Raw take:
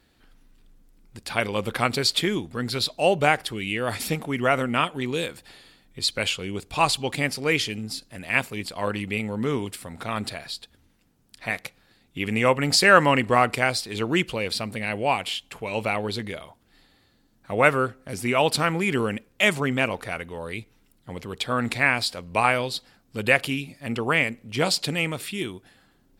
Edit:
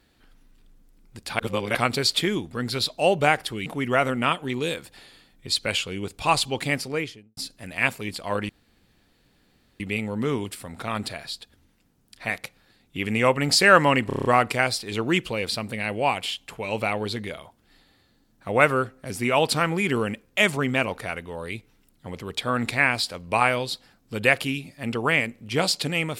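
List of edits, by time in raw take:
1.39–1.75 reverse
3.66–4.18 cut
7.25–7.89 studio fade out
9.01 insert room tone 1.31 s
13.28 stutter 0.03 s, 7 plays

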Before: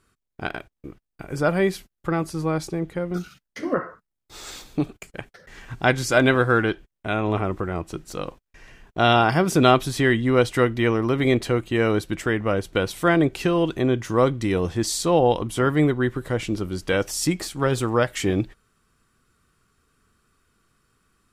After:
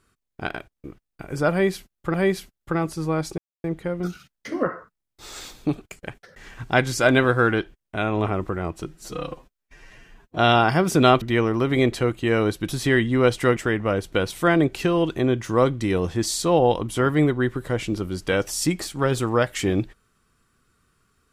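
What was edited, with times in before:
1.51–2.14 loop, 2 plays
2.75 insert silence 0.26 s
7.98–8.99 stretch 1.5×
9.82–10.7 move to 12.17

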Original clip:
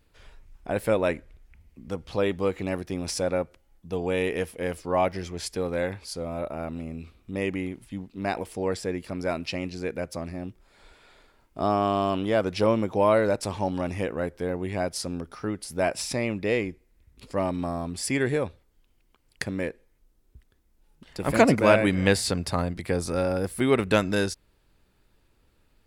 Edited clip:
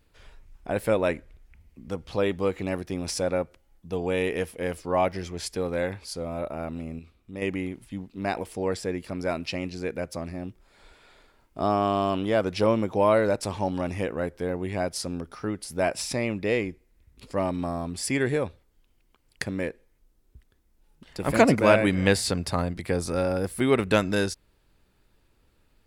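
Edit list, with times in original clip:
6.99–7.42 gain -6 dB

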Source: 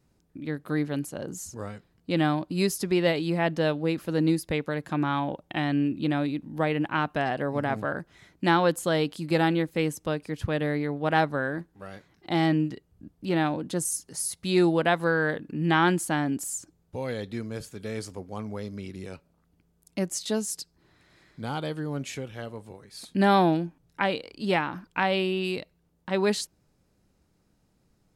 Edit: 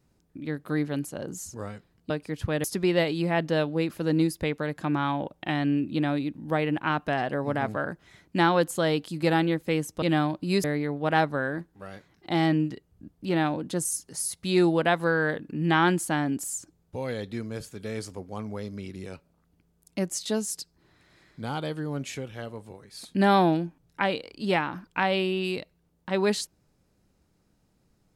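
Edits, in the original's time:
2.1–2.72 swap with 10.1–10.64

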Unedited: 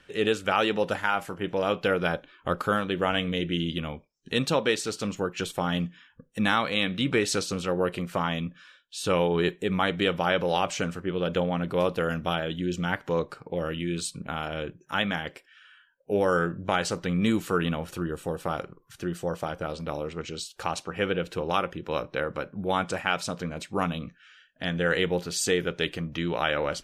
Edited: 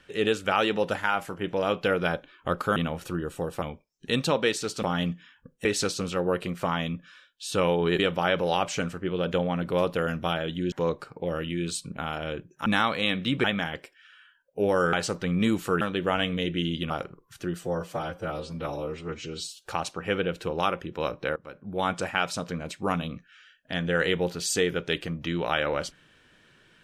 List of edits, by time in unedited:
2.76–3.85 swap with 17.63–18.49
5.06–5.57 cut
6.39–7.17 move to 14.96
9.51–10.01 cut
12.74–13.02 cut
16.45–16.75 cut
19.2–20.56 stretch 1.5×
22.27–22.81 fade in, from -22 dB

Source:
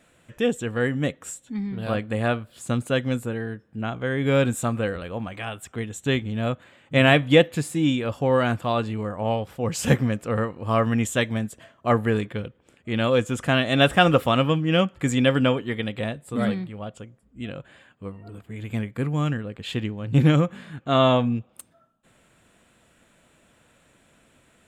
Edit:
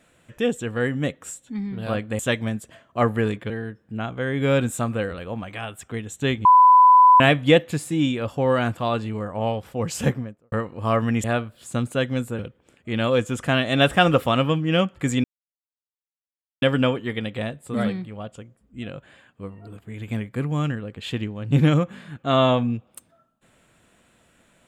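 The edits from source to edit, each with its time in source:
2.19–3.34 swap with 11.08–12.39
6.29–7.04 bleep 1000 Hz -8.5 dBFS
9.7–10.36 studio fade out
15.24 insert silence 1.38 s

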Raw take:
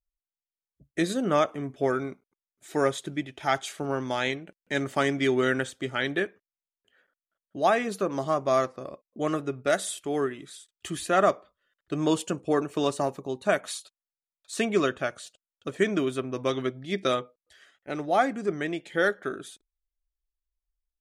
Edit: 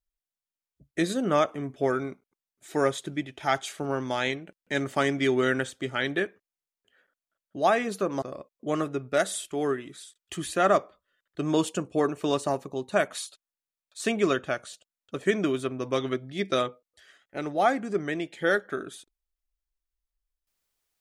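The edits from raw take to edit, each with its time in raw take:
8.22–8.75 cut

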